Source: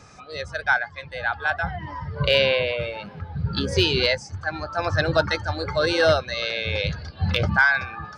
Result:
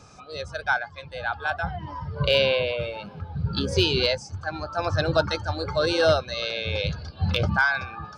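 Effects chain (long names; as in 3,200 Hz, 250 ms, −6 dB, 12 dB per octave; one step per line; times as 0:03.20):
parametric band 1,900 Hz −12.5 dB 0.31 octaves
level −1 dB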